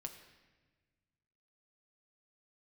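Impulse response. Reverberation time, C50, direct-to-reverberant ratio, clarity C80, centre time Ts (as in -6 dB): 1.3 s, 9.0 dB, 4.0 dB, 10.0 dB, 20 ms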